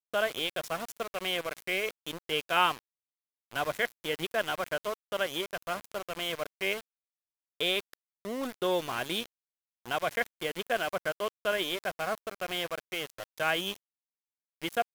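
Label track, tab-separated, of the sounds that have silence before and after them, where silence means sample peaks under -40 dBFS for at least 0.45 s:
3.510000	6.810000	sound
7.610000	9.260000	sound
9.860000	13.760000	sound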